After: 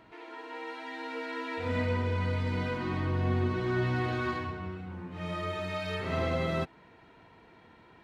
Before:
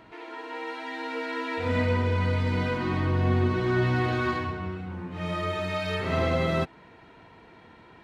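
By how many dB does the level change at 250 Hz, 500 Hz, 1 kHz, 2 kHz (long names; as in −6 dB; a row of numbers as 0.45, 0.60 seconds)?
−5.0, −5.0, −5.0, −5.0 decibels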